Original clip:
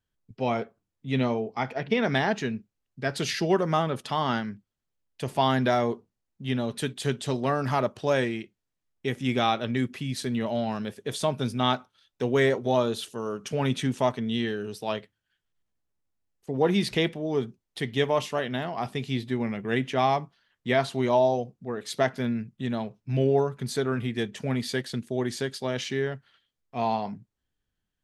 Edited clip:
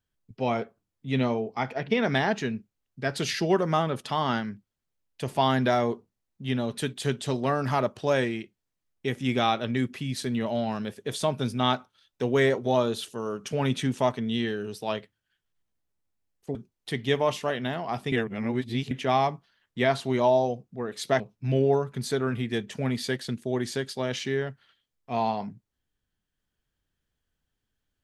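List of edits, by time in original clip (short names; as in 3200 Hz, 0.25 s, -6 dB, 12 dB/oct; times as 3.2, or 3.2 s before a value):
16.55–17.44 cut
19.01–19.8 reverse
22.09–22.85 cut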